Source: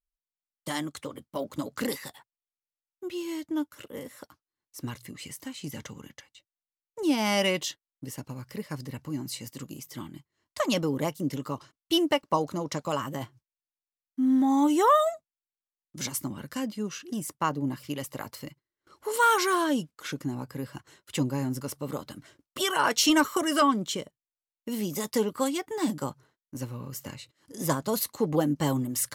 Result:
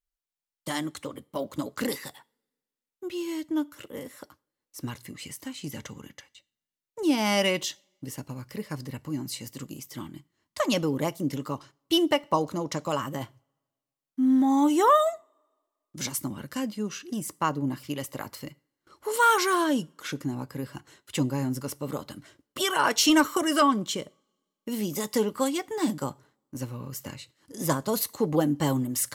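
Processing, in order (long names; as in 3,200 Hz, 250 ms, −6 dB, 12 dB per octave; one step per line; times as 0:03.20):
coupled-rooms reverb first 0.38 s, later 1.6 s, from −25 dB, DRR 20 dB
level +1 dB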